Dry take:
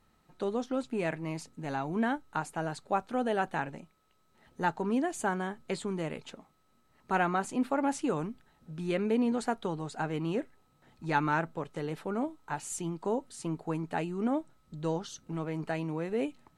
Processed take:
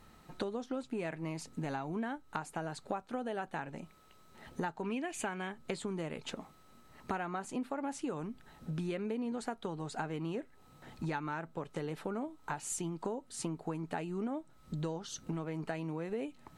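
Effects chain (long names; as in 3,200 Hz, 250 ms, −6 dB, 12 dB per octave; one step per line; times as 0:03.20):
0:04.83–0:05.52: parametric band 2,500 Hz +14.5 dB 0.7 octaves
downward compressor 8 to 1, threshold −44 dBFS, peak gain reduction 21 dB
level +9 dB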